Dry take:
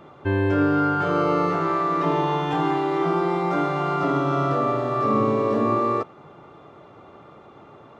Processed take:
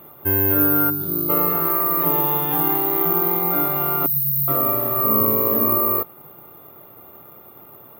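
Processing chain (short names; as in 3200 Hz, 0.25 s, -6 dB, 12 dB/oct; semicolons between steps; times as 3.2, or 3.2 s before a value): 0.9–1.3 spectral gain 420–3500 Hz -18 dB; careless resampling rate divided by 3×, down filtered, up zero stuff; 4.06–4.48 brick-wall FIR band-stop 180–3700 Hz; gain -2 dB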